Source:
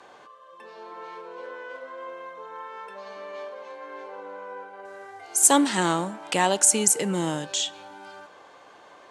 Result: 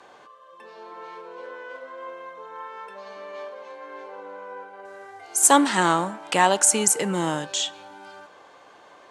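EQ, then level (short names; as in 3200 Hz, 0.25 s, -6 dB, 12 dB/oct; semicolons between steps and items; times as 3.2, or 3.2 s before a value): dynamic EQ 1200 Hz, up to +6 dB, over -37 dBFS, Q 0.76; 0.0 dB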